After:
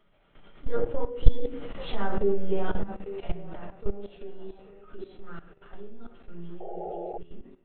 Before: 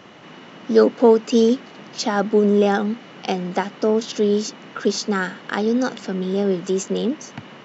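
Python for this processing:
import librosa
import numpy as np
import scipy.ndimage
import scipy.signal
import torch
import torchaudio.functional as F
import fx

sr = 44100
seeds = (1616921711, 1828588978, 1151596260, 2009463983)

p1 = fx.doppler_pass(x, sr, speed_mps=29, closest_m=12.0, pass_at_s=1.81)
p2 = fx.lpc_vocoder(p1, sr, seeds[0], excitation='pitch_kept', order=10)
p3 = fx.peak_eq(p2, sr, hz=68.0, db=-14.0, octaves=1.5)
p4 = fx.hum_notches(p3, sr, base_hz=60, count=4)
p5 = p4 + fx.echo_banded(p4, sr, ms=835, feedback_pct=49, hz=550.0, wet_db=-15.0, dry=0)
p6 = fx.room_shoebox(p5, sr, seeds[1], volume_m3=58.0, walls='mixed', distance_m=1.2)
p7 = fx.spec_paint(p6, sr, seeds[2], shape='noise', start_s=6.6, length_s=0.58, low_hz=350.0, high_hz=850.0, level_db=-27.0)
p8 = fx.level_steps(p7, sr, step_db=15)
p9 = fx.low_shelf(p8, sr, hz=340.0, db=3.5)
y = F.gain(torch.from_numpy(p9), -6.0).numpy()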